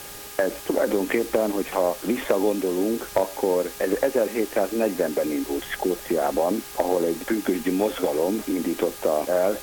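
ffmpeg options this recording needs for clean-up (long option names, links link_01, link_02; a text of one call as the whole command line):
ffmpeg -i in.wav -af "bandreject=frequency=407.9:width_type=h:width=4,bandreject=frequency=815.8:width_type=h:width=4,bandreject=frequency=1223.7:width_type=h:width=4,bandreject=frequency=1631.6:width_type=h:width=4,afwtdn=0.011" out.wav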